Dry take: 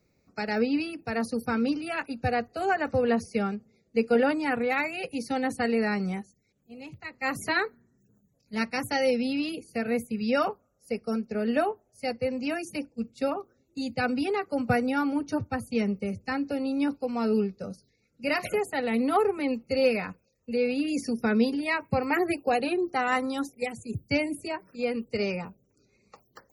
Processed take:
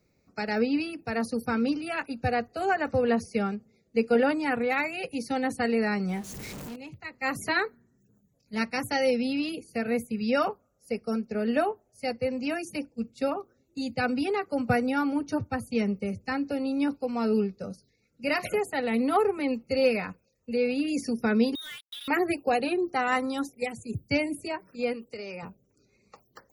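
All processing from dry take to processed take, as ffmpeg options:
-filter_complex "[0:a]asettb=1/sr,asplit=3[s0][s1][s2];[s0]atrim=end=6.094[s3];[s1]atrim=start=6.09:end=6.76,asetpts=PTS-STARTPTS,afade=t=in:d=0.004:c=qsin,afade=t=out:st=0.666:d=0.004:c=qsin,aeval=exprs='val(0)+0.5*0.00891*sgn(val(0))':c=same,acompressor=mode=upward:threshold=0.02:ratio=2.5:attack=3.2:release=140:knee=2.83:detection=peak[s4];[s2]atrim=start=6.756[s5];[s3][s4]acrossfade=d=0.004:c1=hsin:c2=qsin[s6];[s6][s5]acrossfade=d=0.004:c1=qsin:c2=hsin,asettb=1/sr,asplit=3[s7][s8][s9];[s7]atrim=end=21.554[s10];[s8]atrim=start=21.55:end=22.08,asetpts=PTS-STARTPTS,afade=t=in:d=0.004:c=qsin,afade=t=out:st=0.526:d=0.004:c=qsin,lowpass=f=3400:t=q:w=0.5098,lowpass=f=3400:t=q:w=0.6013,lowpass=f=3400:t=q:w=0.9,lowpass=f=3400:t=q:w=2.563,afreqshift=-4000,acompressor=threshold=0.00891:ratio=4:attack=3.2:release=140:knee=1:detection=peak,acrusher=bits=6:mix=0:aa=0.5[s11];[s9]atrim=start=22.076[s12];[s10][s11]acrossfade=d=0.004:c1=hsin:c2=qsin[s13];[s13][s12]acrossfade=d=0.004:c1=qsin:c2=hsin,asettb=1/sr,asplit=3[s14][s15][s16];[s14]atrim=end=24.934[s17];[s15]atrim=start=24.93:end=25.43,asetpts=PTS-STARTPTS,afade=t=in:d=0.004:c=qsin,afade=t=out:st=0.496:d=0.004:c=qsin,bass=f=250:g=-8,treble=f=4000:g=2,acompressor=threshold=0.0178:ratio=5:attack=3.2:release=140:knee=1:detection=peak[s18];[s16]atrim=start=25.426[s19];[s17][s18]acrossfade=d=0.004:c1=hsin:c2=qsin[s20];[s20][s19]acrossfade=d=0.004:c1=qsin:c2=hsin"

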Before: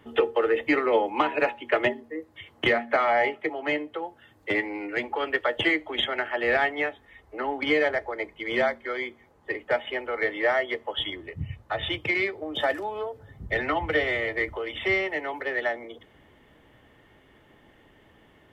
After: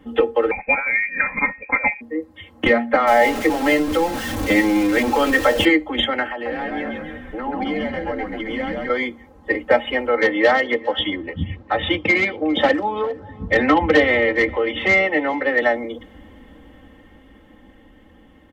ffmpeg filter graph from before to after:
-filter_complex "[0:a]asettb=1/sr,asplit=3[s0][s1][s2];[s0]atrim=end=0.514[s3];[s1]atrim=start=0.51:end=2.01,asetpts=PTS-STARTPTS,afade=t=in:d=0.004:c=qsin,afade=t=out:st=1.496:d=0.004:c=qsin,highpass=f=130:t=q:w=1.6,lowpass=f=2300:t=q:w=0.5098,lowpass=f=2300:t=q:w=0.6013,lowpass=f=2300:t=q:w=0.9,lowpass=f=2300:t=q:w=2.563,afreqshift=-2700[s4];[s2]atrim=start=2.006[s5];[s3][s4]acrossfade=d=0.004:c1=hsin:c2=qsin[s6];[s6][s5]acrossfade=d=0.004:c1=qsin:c2=hsin,asettb=1/sr,asplit=3[s7][s8][s9];[s7]atrim=end=3.074[s10];[s8]atrim=start=3.07:end=5.65,asetpts=PTS-STARTPTS,afade=t=in:d=0.004:c=qsin,afade=t=out:st=2.576:d=0.004:c=qsin,aeval=exprs='val(0)+0.5*0.0398*sgn(val(0))':c=same,bandreject=f=60:t=h:w=6,bandreject=f=120:t=h:w=6,bandreject=f=180:t=h:w=6,bandreject=f=240:t=h:w=6,bandreject=f=300:t=h:w=6,bandreject=f=360:t=h:w=6,bandreject=f=420:t=h:w=6,bandreject=f=480:t=h:w=6,bandreject=f=540:t=h:w=6,acrusher=bits=8:mix=0:aa=0.5[s11];[s9]atrim=start=5.646[s12];[s10][s11]acrossfade=d=0.004:c1=hsin:c2=qsin[s13];[s13][s12]acrossfade=d=0.004:c1=qsin:c2=hsin,asettb=1/sr,asplit=3[s14][s15][s16];[s14]atrim=end=6.324[s17];[s15]atrim=start=6.32:end=8.9,asetpts=PTS-STARTPTS,afade=t=in:d=0.004:c=qsin,afade=t=out:st=2.576:d=0.004:c=qsin,acompressor=threshold=0.0158:ratio=4:attack=3.2:release=140:knee=1:detection=peak,equalizer=f=890:t=o:w=0.64:g=4,asplit=8[s18][s19][s20][s21][s22][s23][s24][s25];[s19]adelay=134,afreqshift=-66,volume=0.708[s26];[s20]adelay=268,afreqshift=-132,volume=0.38[s27];[s21]adelay=402,afreqshift=-198,volume=0.207[s28];[s22]adelay=536,afreqshift=-264,volume=0.111[s29];[s23]adelay=670,afreqshift=-330,volume=0.0603[s30];[s24]adelay=804,afreqshift=-396,volume=0.0324[s31];[s25]adelay=938,afreqshift=-462,volume=0.0176[s32];[s18][s26][s27][s28][s29][s30][s31][s32]amix=inputs=8:normalize=0,atrim=end_sample=113778[s33];[s16]atrim=start=8.896[s34];[s17][s33]acrossfade=d=0.004:c1=hsin:c2=qsin[s35];[s35][s34]acrossfade=d=0.004:c1=qsin:c2=hsin,asettb=1/sr,asplit=3[s36][s37][s38];[s36]atrim=end=10.094[s39];[s37]atrim=start=10.09:end=15.62,asetpts=PTS-STARTPTS,afade=t=in:d=0.004:c=qsin,afade=t=out:st=5.526:d=0.004:c=qsin,aeval=exprs='0.126*(abs(mod(val(0)/0.126+3,4)-2)-1)':c=same,highpass=110,lowpass=4300,aecho=1:1:404:0.0841,atrim=end_sample=243873[s40];[s38]atrim=start=15.616[s41];[s39][s40]acrossfade=d=0.004:c1=hsin:c2=qsin[s42];[s42][s41]acrossfade=d=0.004:c1=qsin:c2=hsin,lowshelf=f=430:g=10.5,aecho=1:1:3.8:0.89,dynaudnorm=f=280:g=17:m=3.76,volume=0.841"

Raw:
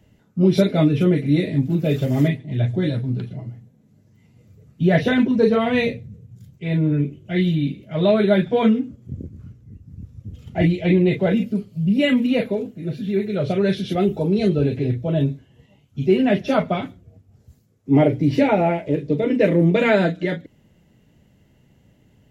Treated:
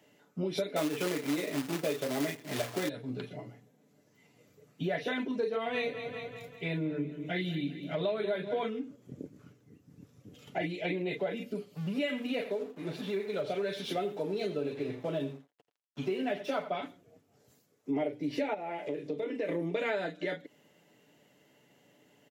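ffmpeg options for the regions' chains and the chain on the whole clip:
-filter_complex "[0:a]asettb=1/sr,asplit=3[s0][s1][s2];[s0]atrim=end=0.764[s3];[s1]atrim=start=0.76:end=2.89,asetpts=PTS-STARTPTS,afade=t=in:d=0.004:c=qsin,afade=t=out:st=2.126:d=0.004:c=qsin,equalizer=f=830:w=0.31:g=7.5,acrusher=bits=3:mode=log:mix=0:aa=0.000001[s4];[s2]atrim=start=2.886[s5];[s3][s4]acrossfade=d=0.004:c1=hsin:c2=qsin[s6];[s6][s5]acrossfade=d=0.004:c1=qsin:c2=hsin,asettb=1/sr,asplit=3[s7][s8][s9];[s7]atrim=end=5.554[s10];[s8]atrim=start=5.55:end=8.64,asetpts=PTS-STARTPTS,afade=t=in:d=0.004:c=qsin,afade=t=out:st=3.086:d=0.004:c=qsin,lowshelf=f=130:g=11.5,bandreject=f=50:t=h:w=6,bandreject=f=100:t=h:w=6,bandreject=f=150:t=h:w=6,bandreject=f=200:t=h:w=6,bandreject=f=250:t=h:w=6,bandreject=f=300:t=h:w=6,bandreject=f=350:t=h:w=6,aecho=1:1:193|386|579|772|965:0.188|0.0942|0.0471|0.0235|0.0118,atrim=end_sample=136269[s11];[s9]atrim=start=8.636[s12];[s10][s11]acrossfade=d=0.004:c1=hsin:c2=qsin[s13];[s13][s12]acrossfade=d=0.004:c1=qsin:c2=hsin,asettb=1/sr,asplit=3[s14][s15][s16];[s14]atrim=end=11.744[s17];[s15]atrim=start=11.74:end=16.7,asetpts=PTS-STARTPTS,afade=t=in:d=0.004:c=qsin,afade=t=out:st=4.956:d=0.004:c=qsin,aeval=exprs='sgn(val(0))*max(abs(val(0))-0.00531,0)':c=same,aecho=1:1:85:0.211,atrim=end_sample=218736[s18];[s16]atrim=start=16.696[s19];[s17][s18]acrossfade=d=0.004:c1=hsin:c2=qsin[s20];[s20][s19]acrossfade=d=0.004:c1=qsin:c2=hsin,asettb=1/sr,asplit=3[s21][s22][s23];[s21]atrim=end=18.544[s24];[s22]atrim=start=18.54:end=19.49,asetpts=PTS-STARTPTS,afade=t=in:d=0.004:c=qsin,afade=t=out:st=0.946:d=0.004:c=qsin,acompressor=threshold=0.0316:ratio=2:attack=3.2:release=140:knee=1:detection=peak,asplit=2[s25][s26];[s26]adelay=26,volume=0.282[s27];[s25][s27]amix=inputs=2:normalize=0,atrim=end_sample=41895[s28];[s23]atrim=start=19.486[s29];[s24][s28]acrossfade=d=0.004:c1=hsin:c2=qsin[s30];[s30][s29]acrossfade=d=0.004:c1=qsin:c2=hsin,highpass=380,aecho=1:1:6.9:0.34,acompressor=threshold=0.0251:ratio=4"

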